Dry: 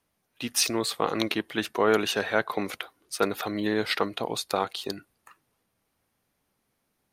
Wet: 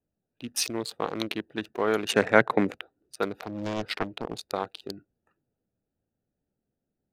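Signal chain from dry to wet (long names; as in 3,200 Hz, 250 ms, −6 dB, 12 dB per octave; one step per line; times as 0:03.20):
adaptive Wiener filter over 41 samples
0:02.09–0:02.74: octave-band graphic EQ 125/250/500/1,000/2,000/8,000 Hz +11/+9/+6/+6/+11/+11 dB
0:03.36–0:04.43: highs frequency-modulated by the lows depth 0.77 ms
level −3 dB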